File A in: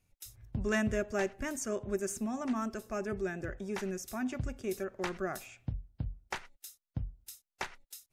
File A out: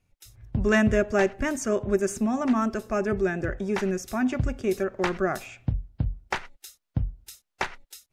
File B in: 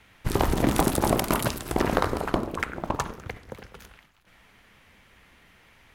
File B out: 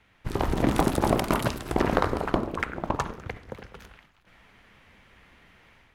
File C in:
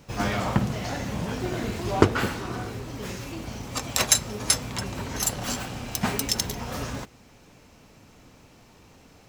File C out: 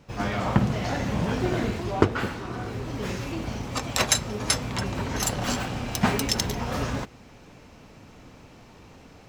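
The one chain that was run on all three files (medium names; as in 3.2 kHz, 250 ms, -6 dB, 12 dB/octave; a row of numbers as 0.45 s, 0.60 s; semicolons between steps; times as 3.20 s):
treble shelf 6.2 kHz -10.5 dB; level rider gain up to 6.5 dB; normalise loudness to -27 LUFS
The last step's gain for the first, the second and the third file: +4.0 dB, -5.5 dB, -2.0 dB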